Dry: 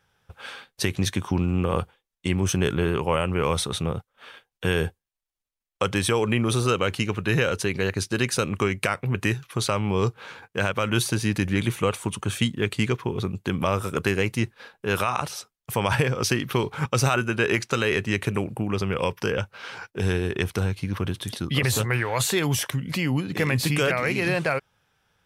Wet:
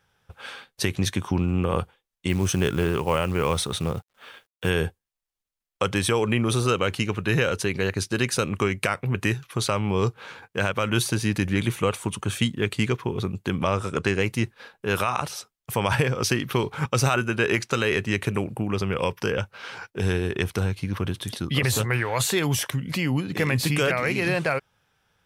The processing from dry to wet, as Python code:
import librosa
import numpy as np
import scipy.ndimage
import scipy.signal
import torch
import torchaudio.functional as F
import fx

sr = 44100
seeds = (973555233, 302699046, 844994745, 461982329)

y = fx.quant_companded(x, sr, bits=6, at=(2.29, 4.7))
y = fx.lowpass(y, sr, hz=8700.0, slope=24, at=(13.59, 14.21))